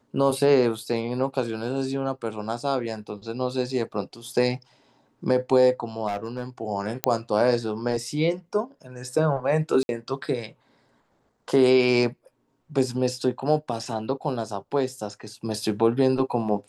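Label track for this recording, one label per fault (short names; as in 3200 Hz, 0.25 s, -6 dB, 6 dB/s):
6.070000	6.440000	clipped -23.5 dBFS
7.040000	7.040000	pop -4 dBFS
9.830000	9.890000	gap 61 ms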